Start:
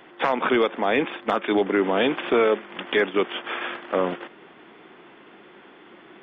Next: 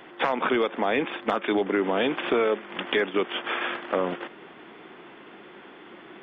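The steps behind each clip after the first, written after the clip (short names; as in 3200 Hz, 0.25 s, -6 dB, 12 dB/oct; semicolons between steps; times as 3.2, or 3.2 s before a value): compressor 2:1, threshold -26 dBFS, peak gain reduction 6 dB; gain +2 dB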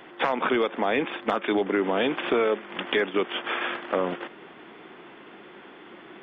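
nothing audible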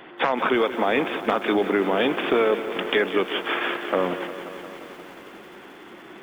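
lo-fi delay 0.177 s, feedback 80%, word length 8-bit, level -12.5 dB; gain +2.5 dB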